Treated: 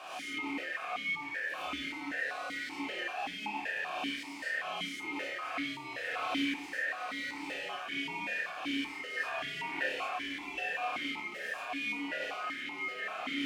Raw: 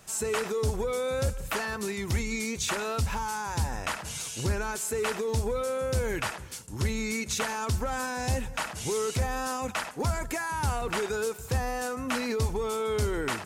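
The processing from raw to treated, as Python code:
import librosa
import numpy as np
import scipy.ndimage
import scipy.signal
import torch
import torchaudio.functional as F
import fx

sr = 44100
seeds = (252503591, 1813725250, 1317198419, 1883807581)

p1 = np.sign(x) * np.sqrt(np.mean(np.square(x)))
p2 = fx.comb(p1, sr, ms=5.1, depth=0.98, at=(5.33, 6.44))
p3 = fx.low_shelf(p2, sr, hz=420.0, db=8.0, at=(9.17, 9.79))
p4 = p3 * np.sin(2.0 * np.pi * 1700.0 * np.arange(len(p3)) / sr)
p5 = p4 + fx.room_flutter(p4, sr, wall_m=4.9, rt60_s=0.34, dry=0)
p6 = fx.rev_gated(p5, sr, seeds[0], gate_ms=140, shape='rising', drr_db=-6.0)
y = fx.vowel_held(p6, sr, hz=5.2)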